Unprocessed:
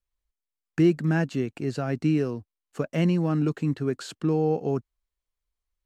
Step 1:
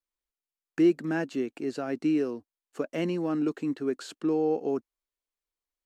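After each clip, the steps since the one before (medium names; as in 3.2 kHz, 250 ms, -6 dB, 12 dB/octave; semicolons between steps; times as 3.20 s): resonant low shelf 190 Hz -13 dB, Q 1.5; trim -3.5 dB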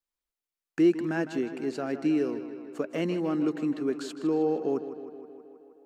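tape echo 157 ms, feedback 74%, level -11 dB, low-pass 4.9 kHz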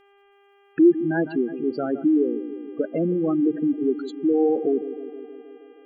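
spectral gate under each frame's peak -15 dB strong; mains buzz 400 Hz, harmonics 8, -64 dBFS -5 dB/octave; trim +6.5 dB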